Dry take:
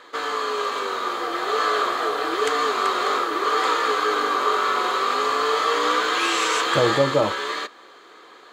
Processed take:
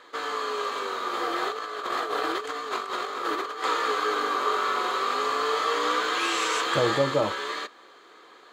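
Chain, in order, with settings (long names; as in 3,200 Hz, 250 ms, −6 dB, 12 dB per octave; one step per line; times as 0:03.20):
0:01.13–0:03.64: compressor whose output falls as the input rises −25 dBFS, ratio −0.5
level −4.5 dB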